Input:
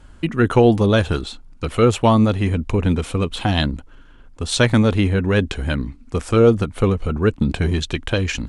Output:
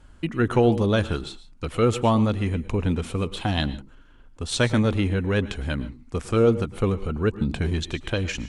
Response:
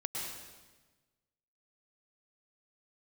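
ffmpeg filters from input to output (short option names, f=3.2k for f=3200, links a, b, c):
-filter_complex "[0:a]asplit=2[a][b];[1:a]atrim=start_sample=2205,afade=t=out:st=0.2:d=0.01,atrim=end_sample=9261[c];[b][c]afir=irnorm=-1:irlink=0,volume=-10.5dB[d];[a][d]amix=inputs=2:normalize=0,volume=-7.5dB"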